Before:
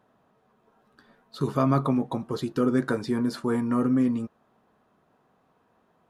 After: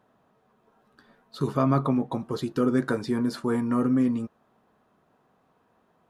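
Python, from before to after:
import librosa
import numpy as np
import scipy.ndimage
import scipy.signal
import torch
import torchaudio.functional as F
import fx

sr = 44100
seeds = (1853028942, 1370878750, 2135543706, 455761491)

y = fx.high_shelf(x, sr, hz=4900.0, db=-5.5, at=(1.53, 2.13))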